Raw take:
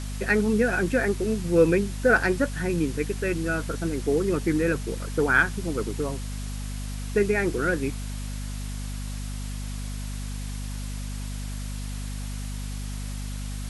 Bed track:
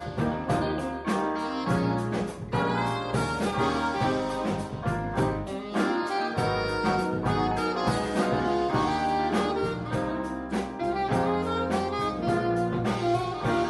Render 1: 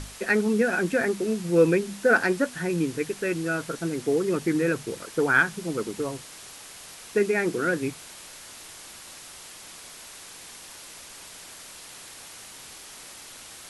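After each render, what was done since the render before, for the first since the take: notches 50/100/150/200/250 Hz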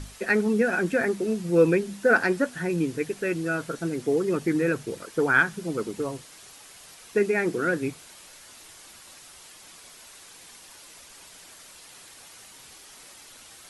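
denoiser 6 dB, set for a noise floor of -45 dBFS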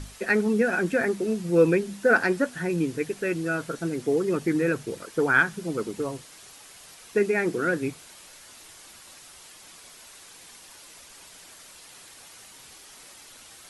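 nothing audible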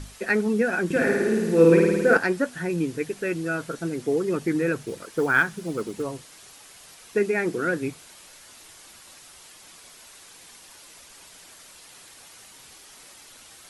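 0.85–2.17 flutter echo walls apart 9.3 m, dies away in 1.4 s; 4.81–6.03 short-mantissa float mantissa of 4-bit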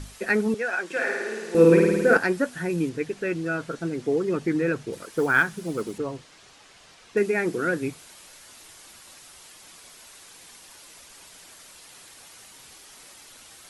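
0.54–1.55 BPF 650–7800 Hz; 2.89–4.93 air absorption 54 m; 5.98–7.17 air absorption 84 m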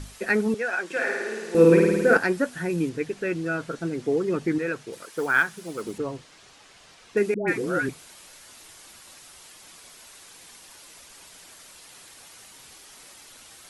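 4.58–5.83 low shelf 370 Hz -10 dB; 7.34–7.89 dispersion highs, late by 0.138 s, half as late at 750 Hz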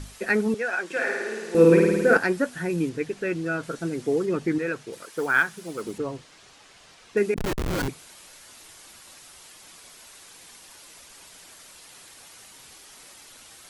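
3.63–4.26 high shelf 8800 Hz +10.5 dB; 7.36–7.88 Schmitt trigger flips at -23 dBFS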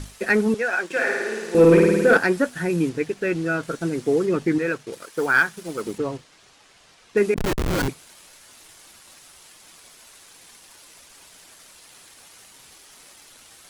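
sample leveller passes 1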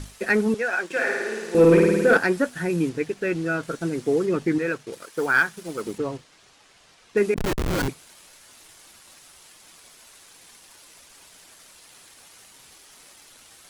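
gain -1.5 dB

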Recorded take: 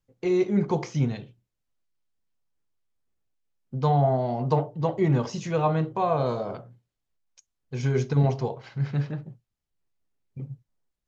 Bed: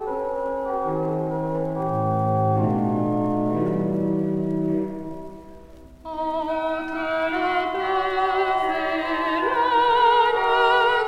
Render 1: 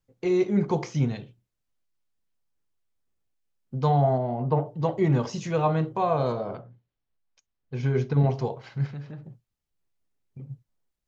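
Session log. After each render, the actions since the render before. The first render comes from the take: 4.18–4.66 air absorption 440 m; 6.32–8.34 air absorption 160 m; 8.86–10.49 compressor 2.5:1, threshold -39 dBFS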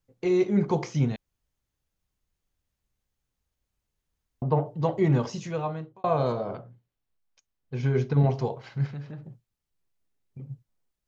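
1.16–4.42 room tone; 5.17–6.04 fade out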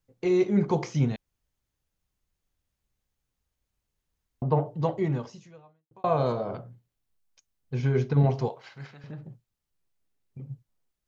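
4.8–5.91 fade out quadratic; 6.53–7.8 tone controls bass +3 dB, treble +4 dB; 8.49–9.04 HPF 830 Hz 6 dB/oct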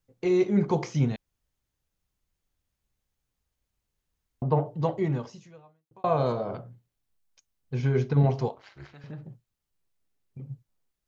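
8.51–8.94 AM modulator 210 Hz, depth 90%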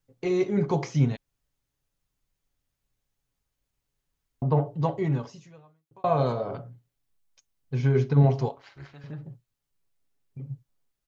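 comb 7.2 ms, depth 37%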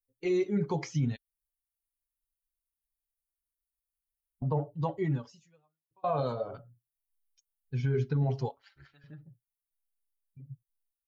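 per-bin expansion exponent 1.5; limiter -21 dBFS, peak gain reduction 11.5 dB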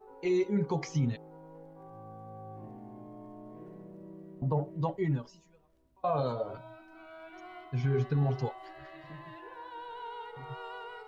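add bed -25.5 dB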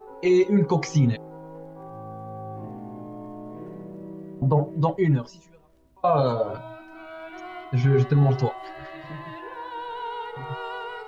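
gain +9.5 dB

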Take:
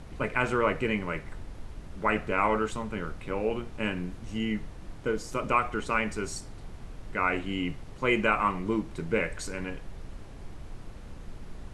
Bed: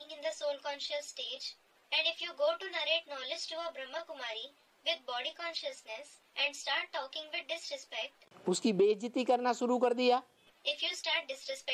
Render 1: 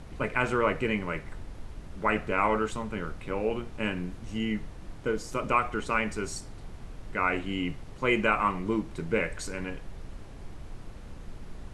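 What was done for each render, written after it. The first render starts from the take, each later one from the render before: nothing audible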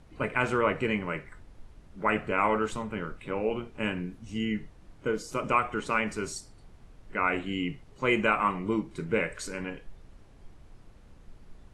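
noise print and reduce 10 dB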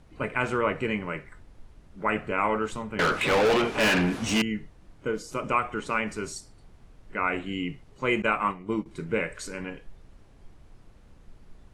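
2.99–4.42 overdrive pedal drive 34 dB, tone 5400 Hz, clips at -14.5 dBFS; 8.22–8.86 expander -28 dBFS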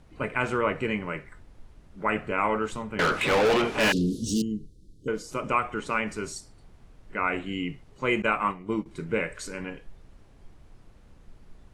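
3.92–5.08 inverse Chebyshev band-stop 710–2400 Hz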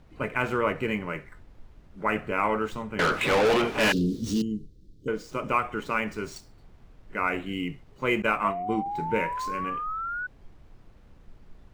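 median filter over 5 samples; 8.44–10.27 painted sound rise 660–1500 Hz -32 dBFS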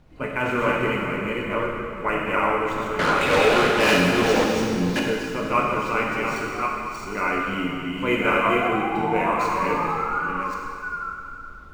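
reverse delay 0.555 s, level -2 dB; plate-style reverb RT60 2.5 s, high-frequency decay 1×, DRR -2 dB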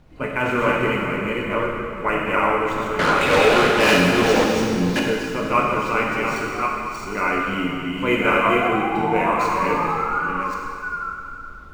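gain +2.5 dB

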